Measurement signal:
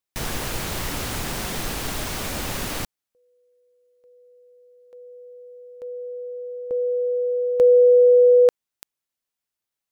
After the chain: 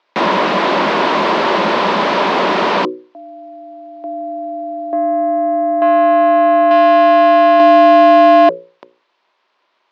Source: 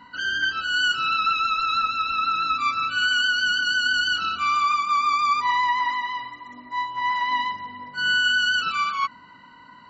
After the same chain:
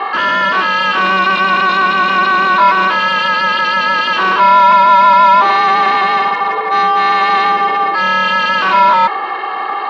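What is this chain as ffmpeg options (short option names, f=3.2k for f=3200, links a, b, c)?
-filter_complex "[0:a]bandreject=f=60:t=h:w=6,bandreject=f=120:t=h:w=6,bandreject=f=180:t=h:w=6,bandreject=f=240:t=h:w=6,bandreject=f=300:t=h:w=6,bandreject=f=360:t=h:w=6,aeval=exprs='val(0)*sin(2*PI*190*n/s)':c=same,acontrast=55,asplit=2[a][b];[b]highpass=f=720:p=1,volume=35dB,asoftclip=type=tanh:threshold=-5dB[c];[a][c]amix=inputs=2:normalize=0,lowpass=f=2.2k:p=1,volume=-6dB,highpass=f=190:w=0.5412,highpass=f=190:w=1.3066,equalizer=f=370:t=q:w=4:g=7,equalizer=f=600:t=q:w=4:g=7,equalizer=f=1k:t=q:w=4:g=10,lowpass=f=4.4k:w=0.5412,lowpass=f=4.4k:w=1.3066,volume=-2dB"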